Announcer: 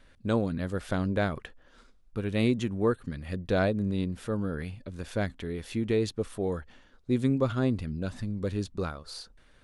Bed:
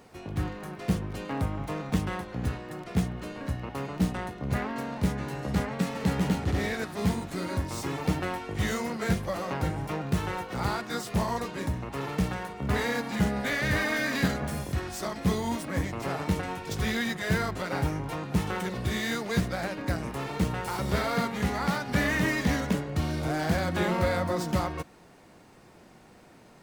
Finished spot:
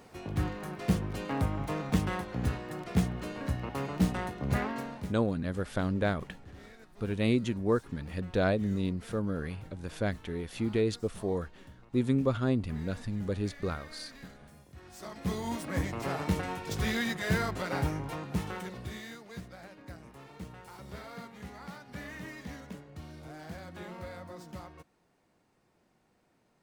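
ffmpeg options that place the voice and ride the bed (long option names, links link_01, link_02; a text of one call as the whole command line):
ffmpeg -i stem1.wav -i stem2.wav -filter_complex "[0:a]adelay=4850,volume=-1.5dB[link_01];[1:a]volume=20dB,afade=type=out:start_time=4.64:duration=0.51:silence=0.0794328,afade=type=in:start_time=14.74:duration=1.06:silence=0.0944061,afade=type=out:start_time=17.77:duration=1.41:silence=0.177828[link_02];[link_01][link_02]amix=inputs=2:normalize=0" out.wav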